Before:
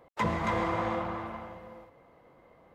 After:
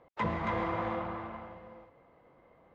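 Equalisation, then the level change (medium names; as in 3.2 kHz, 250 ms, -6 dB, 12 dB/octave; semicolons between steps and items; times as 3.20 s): low-pass 3.6 kHz 12 dB/octave; -3.0 dB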